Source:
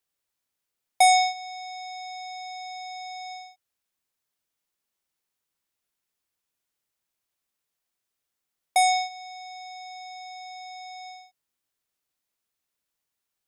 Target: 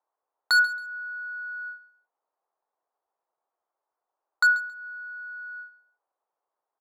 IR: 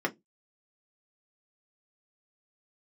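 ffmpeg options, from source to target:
-filter_complex "[0:a]asetrate=87318,aresample=44100,asuperpass=centerf=640:order=4:qfactor=0.8,equalizer=f=860:w=0.59:g=15,asplit=2[a][b];[1:a]atrim=start_sample=2205[c];[b][c]afir=irnorm=-1:irlink=0,volume=-25.5dB[d];[a][d]amix=inputs=2:normalize=0,aeval=exprs='0.2*(abs(mod(val(0)/0.2+3,4)-2)-1)':c=same,aecho=1:1:136|272:0.141|0.0325"

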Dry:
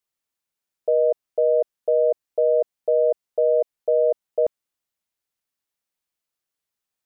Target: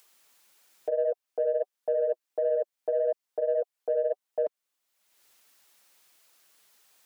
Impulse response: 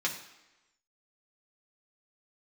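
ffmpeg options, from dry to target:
-filter_complex "[0:a]highpass=f=460:p=1,alimiter=level_in=2dB:limit=-24dB:level=0:latency=1:release=433,volume=-2dB,acompressor=mode=upward:threshold=-55dB:ratio=2.5,flanger=delay=1.1:depth=6.8:regen=-28:speed=1.6:shape=triangular,asplit=2[a][b];[b]asoftclip=type=tanh:threshold=-33dB,volume=-10dB[c];[a][c]amix=inputs=2:normalize=0,volume=8dB"

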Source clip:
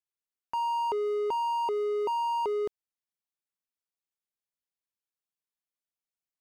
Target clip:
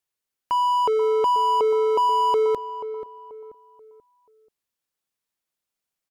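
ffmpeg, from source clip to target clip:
-filter_complex "[0:a]asetrate=46305,aresample=44100,asplit=2[a][b];[b]adelay=484,lowpass=f=1.4k:p=1,volume=-11.5dB,asplit=2[c][d];[d]adelay=484,lowpass=f=1.4k:p=1,volume=0.38,asplit=2[e][f];[f]adelay=484,lowpass=f=1.4k:p=1,volume=0.38,asplit=2[g][h];[h]adelay=484,lowpass=f=1.4k:p=1,volume=0.38[i];[a][c][e][g][i]amix=inputs=5:normalize=0,volume=8.5dB"

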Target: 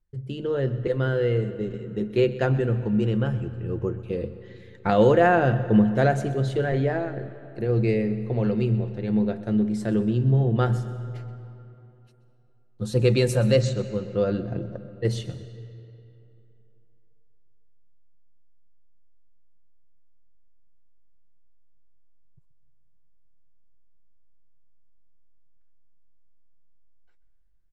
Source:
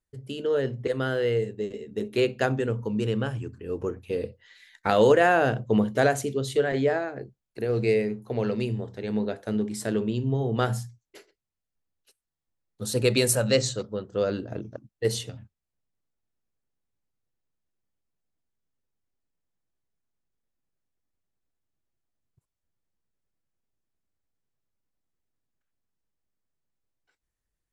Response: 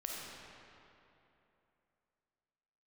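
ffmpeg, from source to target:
-filter_complex "[0:a]aemphasis=mode=reproduction:type=bsi,aecho=1:1:5.7:0.39,asplit=2[a][b];[1:a]atrim=start_sample=2205,adelay=128[c];[b][c]afir=irnorm=-1:irlink=0,volume=-14dB[d];[a][d]amix=inputs=2:normalize=0,volume=-1.5dB"

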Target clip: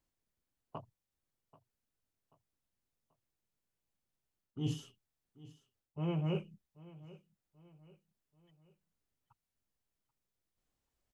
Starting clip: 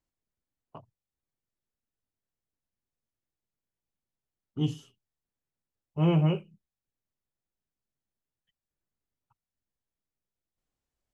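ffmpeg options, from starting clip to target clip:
-af "areverse,acompressor=threshold=-33dB:ratio=16,areverse,aecho=1:1:785|1570|2355:0.106|0.0455|0.0196,volume=1.5dB"

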